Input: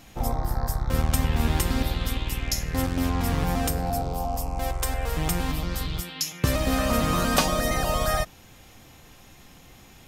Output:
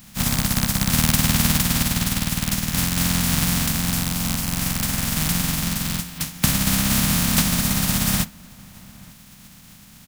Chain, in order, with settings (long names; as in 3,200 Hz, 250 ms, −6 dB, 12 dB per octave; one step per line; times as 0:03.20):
compressing power law on the bin magnitudes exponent 0.13
low shelf with overshoot 280 Hz +11.5 dB, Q 3
slap from a distant wall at 150 metres, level −23 dB
level +1 dB